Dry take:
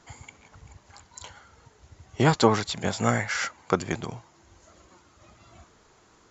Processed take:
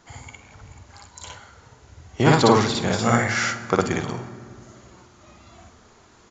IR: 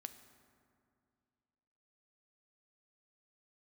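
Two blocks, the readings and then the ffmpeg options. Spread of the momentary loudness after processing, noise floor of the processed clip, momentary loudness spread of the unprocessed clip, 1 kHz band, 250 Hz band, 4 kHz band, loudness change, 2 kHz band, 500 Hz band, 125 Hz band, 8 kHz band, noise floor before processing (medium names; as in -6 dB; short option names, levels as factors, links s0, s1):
21 LU, -53 dBFS, 23 LU, +5.5 dB, +5.5 dB, +5.0 dB, +5.0 dB, +5.5 dB, +5.0 dB, +5.0 dB, no reading, -59 dBFS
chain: -filter_complex "[0:a]asplit=2[s0][s1];[s1]adelay=48,volume=0.237[s2];[s0][s2]amix=inputs=2:normalize=0,asplit=2[s3][s4];[1:a]atrim=start_sample=2205,adelay=58[s5];[s4][s5]afir=irnorm=-1:irlink=0,volume=2[s6];[s3][s6]amix=inputs=2:normalize=0,aresample=16000,aresample=44100,volume=1.19"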